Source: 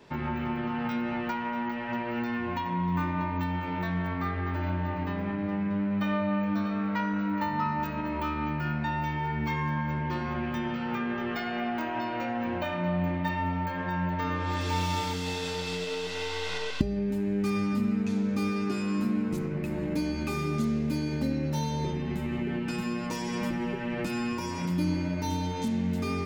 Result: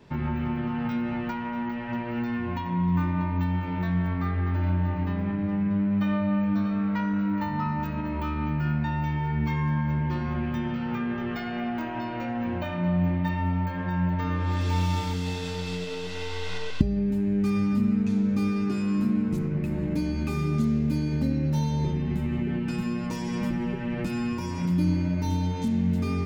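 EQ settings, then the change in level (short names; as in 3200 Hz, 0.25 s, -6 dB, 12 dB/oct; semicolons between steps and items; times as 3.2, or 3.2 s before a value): tone controls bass +9 dB, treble -1 dB; -2.0 dB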